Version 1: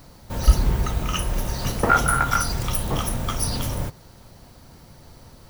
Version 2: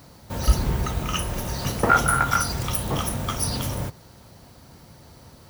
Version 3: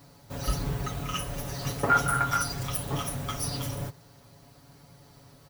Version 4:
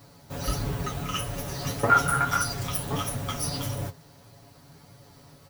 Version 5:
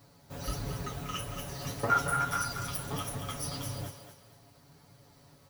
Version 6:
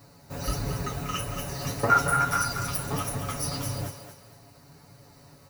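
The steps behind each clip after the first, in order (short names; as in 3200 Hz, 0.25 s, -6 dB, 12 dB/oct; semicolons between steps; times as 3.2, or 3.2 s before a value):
HPF 58 Hz
comb 7.1 ms, depth 86%; gain -8 dB
flange 1.6 Hz, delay 8.4 ms, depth 5.3 ms, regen +40%; gain +6 dB
thinning echo 0.23 s, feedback 33%, high-pass 350 Hz, level -7.5 dB; gain -7 dB
notch 3300 Hz, Q 5.9; gain +6 dB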